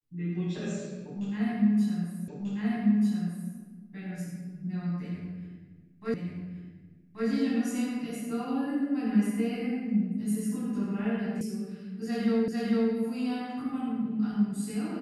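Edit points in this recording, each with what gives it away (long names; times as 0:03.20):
0:02.28: the same again, the last 1.24 s
0:06.14: the same again, the last 1.13 s
0:11.41: cut off before it has died away
0:12.48: the same again, the last 0.45 s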